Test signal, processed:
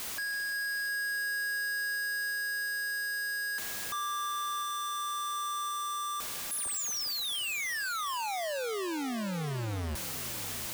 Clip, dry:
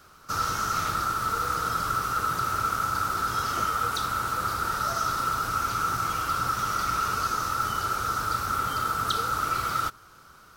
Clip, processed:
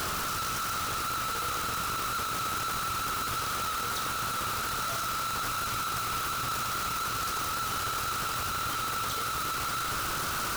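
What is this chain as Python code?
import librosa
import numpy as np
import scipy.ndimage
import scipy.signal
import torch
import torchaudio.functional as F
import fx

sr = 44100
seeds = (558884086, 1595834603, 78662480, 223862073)

y = np.sign(x) * np.sqrt(np.mean(np.square(x)))
y = fx.echo_heads(y, sr, ms=354, heads='first and second', feedback_pct=71, wet_db=-19.0)
y = F.gain(torch.from_numpy(y), -4.0).numpy()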